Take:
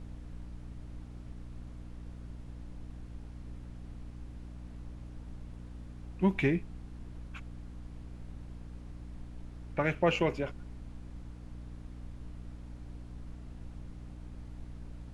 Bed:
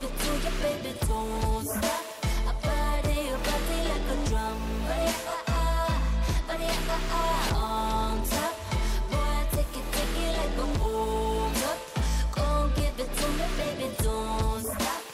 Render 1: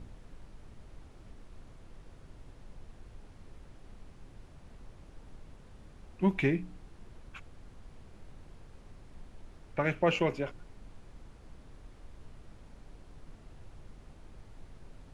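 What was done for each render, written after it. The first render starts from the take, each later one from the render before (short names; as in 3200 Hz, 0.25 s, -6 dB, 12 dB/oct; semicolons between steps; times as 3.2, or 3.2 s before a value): de-hum 60 Hz, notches 5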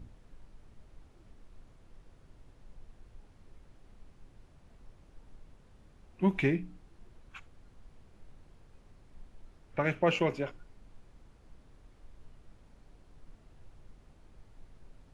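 noise print and reduce 6 dB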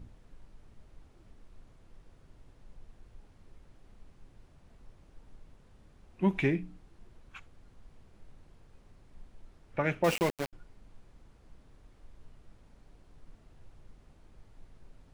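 10.04–10.53 sample gate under -30.5 dBFS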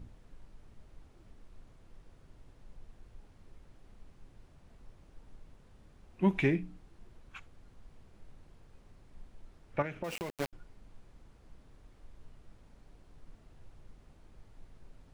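9.82–10.39 compressor 8:1, threshold -34 dBFS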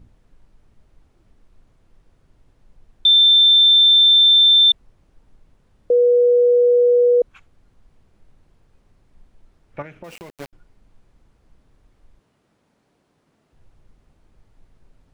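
3.05–4.72 bleep 3560 Hz -8.5 dBFS; 5.9–7.22 bleep 486 Hz -10.5 dBFS; 12.19–13.53 HPF 180 Hz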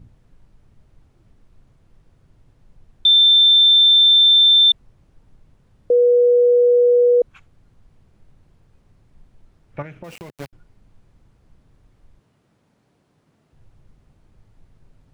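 bell 120 Hz +7 dB 1.3 oct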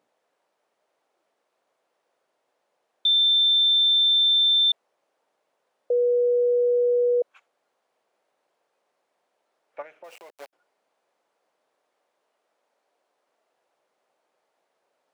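ladder high-pass 470 Hz, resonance 35%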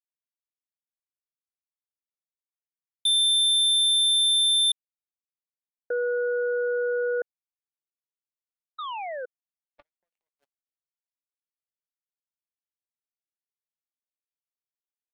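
8.78–9.26 painted sound fall 480–1300 Hz -23 dBFS; power-law curve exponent 3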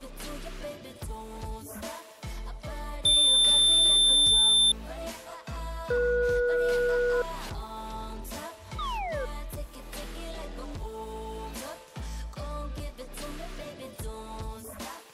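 add bed -10.5 dB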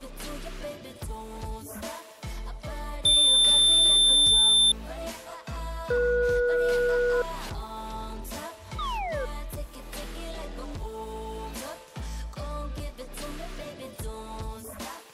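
gain +1.5 dB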